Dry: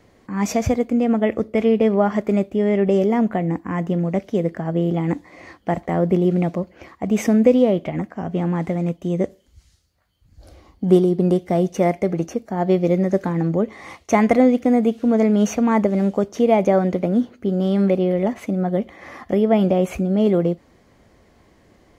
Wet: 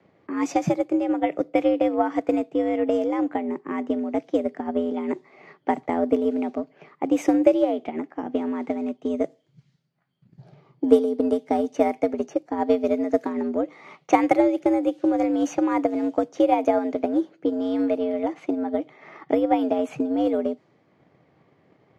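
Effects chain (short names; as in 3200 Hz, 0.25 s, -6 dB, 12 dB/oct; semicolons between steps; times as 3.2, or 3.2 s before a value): frequency shift +79 Hz; transient shaper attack +7 dB, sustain -1 dB; low-pass opened by the level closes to 3000 Hz, open at -10 dBFS; gain -6.5 dB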